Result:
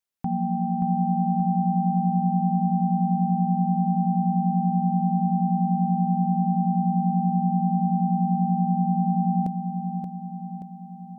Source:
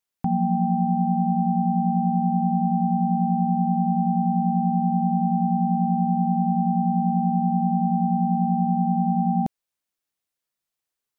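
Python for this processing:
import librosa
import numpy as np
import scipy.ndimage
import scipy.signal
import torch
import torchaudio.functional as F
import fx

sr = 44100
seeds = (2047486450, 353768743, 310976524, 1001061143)

y = fx.echo_feedback(x, sr, ms=578, feedback_pct=54, wet_db=-7.0)
y = F.gain(torch.from_numpy(y), -3.5).numpy()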